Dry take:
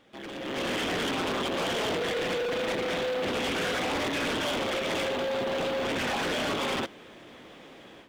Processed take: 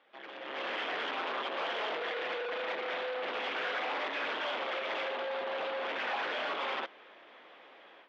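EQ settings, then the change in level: high-pass 700 Hz 12 dB/octave; low-pass 8.6 kHz 24 dB/octave; distance through air 320 m; 0.0 dB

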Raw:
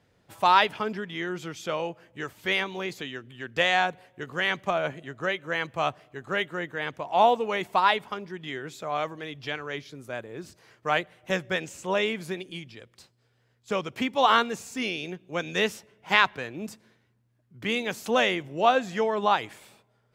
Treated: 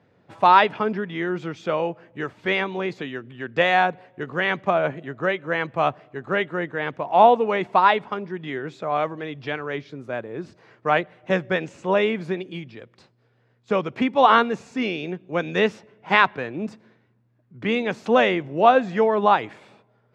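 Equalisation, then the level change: high-pass 120 Hz; tape spacing loss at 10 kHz 26 dB; band-stop 3.1 kHz, Q 27; +8.0 dB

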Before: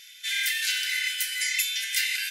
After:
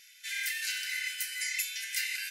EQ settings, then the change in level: peaking EQ 3.4 kHz -10 dB 0.23 oct; -6.0 dB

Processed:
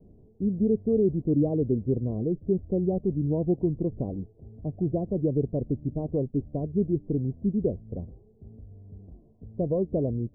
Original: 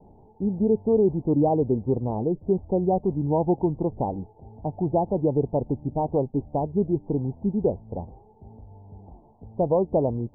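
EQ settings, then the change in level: boxcar filter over 51 samples; 0.0 dB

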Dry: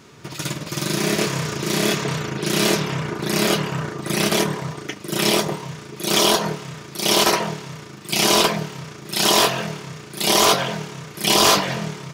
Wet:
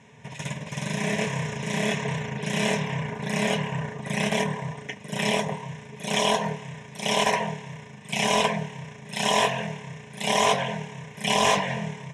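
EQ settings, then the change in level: cabinet simulation 110–8600 Hz, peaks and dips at 230 Hz +5 dB, 420 Hz +8 dB, 1 kHz +4 dB, 1.8 kHz +4 dB, 5.1 kHz +8 dB; bass shelf 170 Hz +6 dB; static phaser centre 1.3 kHz, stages 6; -4.0 dB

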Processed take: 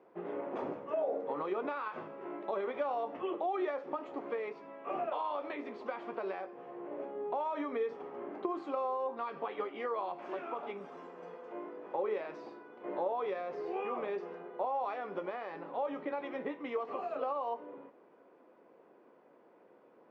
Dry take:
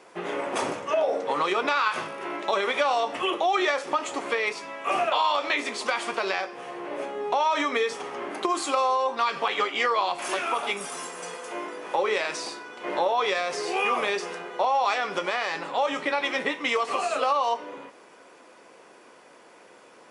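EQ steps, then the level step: band-pass filter 390 Hz, Q 0.59; distance through air 150 m; bass shelf 350 Hz +5.5 dB; -9.0 dB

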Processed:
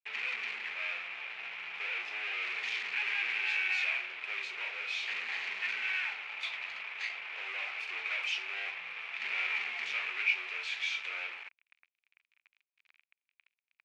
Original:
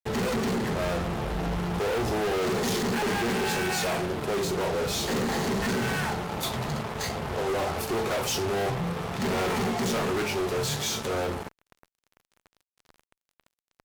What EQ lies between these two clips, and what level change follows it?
resonant high-pass 2.4 kHz, resonance Q 6.6; tape spacing loss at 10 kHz 36 dB; +1.0 dB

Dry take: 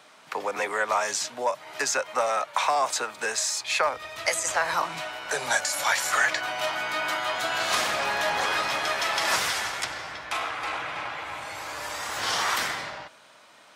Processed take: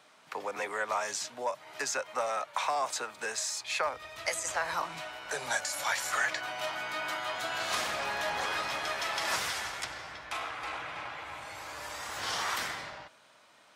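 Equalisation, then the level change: bass shelf 68 Hz +8 dB; -7.0 dB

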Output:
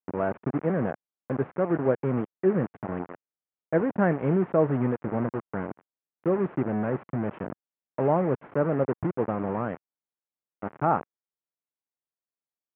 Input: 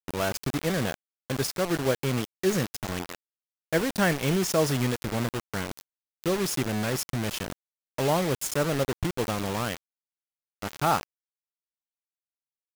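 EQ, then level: Gaussian low-pass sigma 5.9 samples; high-pass 140 Hz 12 dB/octave; +3.0 dB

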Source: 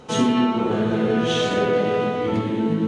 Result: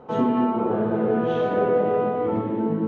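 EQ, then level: band-pass filter 880 Hz, Q 1; tilt EQ -4 dB/octave; 0.0 dB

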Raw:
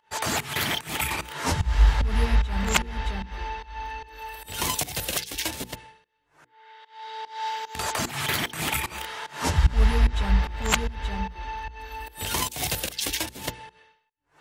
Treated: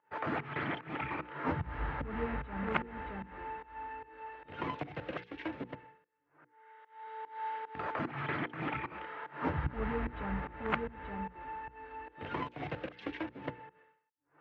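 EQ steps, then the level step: cabinet simulation 110–2200 Hz, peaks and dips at 140 Hz +5 dB, 300 Hz +9 dB, 500 Hz +5 dB, 1.3 kHz +4 dB; -8.5 dB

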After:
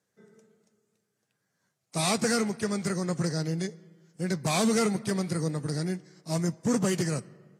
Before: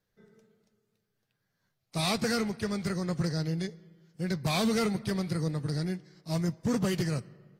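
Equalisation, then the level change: high-pass 160 Hz 12 dB/octave; distance through air 61 m; resonant high shelf 5.7 kHz +10.5 dB, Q 1.5; +3.5 dB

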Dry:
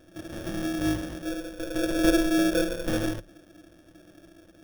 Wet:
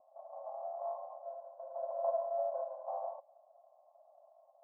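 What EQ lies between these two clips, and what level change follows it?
brick-wall FIR high-pass 540 Hz; rippled Chebyshev low-pass 1.1 kHz, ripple 9 dB; +6.5 dB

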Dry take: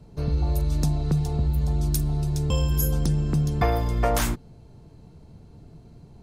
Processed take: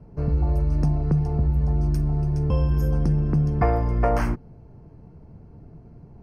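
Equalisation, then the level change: boxcar filter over 12 samples; +2.0 dB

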